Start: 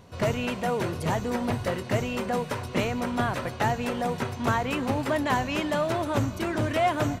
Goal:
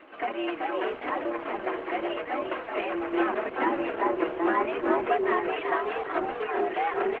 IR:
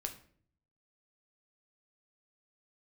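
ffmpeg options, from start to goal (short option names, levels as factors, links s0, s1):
-filter_complex "[0:a]acrossover=split=1200[s0][s1];[s0]tremolo=f=2.4:d=0.43[s2];[s1]acompressor=mode=upward:threshold=0.00316:ratio=2.5[s3];[s2][s3]amix=inputs=2:normalize=0,asettb=1/sr,asplit=3[s4][s5][s6];[s4]atrim=end=3.124[s7];[s5]atrim=start=3.12:end=5.15,asetpts=PTS-STARTPTS,afade=t=in:d=0.004:c=qsin,afade=t=out:st=2.026:d=0.004:c=qsin,lowshelf=f=390:g=9[s8];[s6]atrim=start=5.146[s9];[s7][s8]acrossfade=d=0.004:c1=hsin:c2=qsin[s10];[s10][s9]acrossfade=d=0.004:c1=qsin:c2=hsin,aecho=1:1:3.4:0.31,asplit=5[s11][s12][s13][s14][s15];[s12]adelay=382,afreqshift=34,volume=0.631[s16];[s13]adelay=764,afreqshift=68,volume=0.195[s17];[s14]adelay=1146,afreqshift=102,volume=0.061[s18];[s15]adelay=1528,afreqshift=136,volume=0.0188[s19];[s11][s16][s17][s18][s19]amix=inputs=5:normalize=0,highpass=f=200:t=q:w=0.5412,highpass=f=200:t=q:w=1.307,lowpass=f=2600:t=q:w=0.5176,lowpass=f=2600:t=q:w=0.7071,lowpass=f=2600:t=q:w=1.932,afreqshift=98,flanger=delay=3.2:depth=3.2:regen=-8:speed=0.81:shape=triangular,asplit=2[s20][s21];[s21]acompressor=threshold=0.00708:ratio=6,volume=1.12[s22];[s20][s22]amix=inputs=2:normalize=0" -ar 48000 -c:a libopus -b:a 12k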